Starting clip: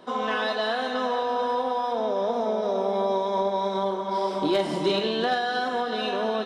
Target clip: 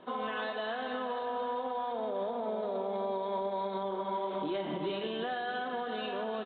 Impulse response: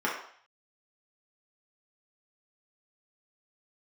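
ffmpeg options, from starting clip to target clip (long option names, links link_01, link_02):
-filter_complex "[0:a]asplit=2[link_01][link_02];[link_02]aecho=0:1:598:0.0944[link_03];[link_01][link_03]amix=inputs=2:normalize=0,alimiter=limit=-22dB:level=0:latency=1:release=141,volume=-4dB" -ar 8000 -c:a adpcm_g726 -b:a 40k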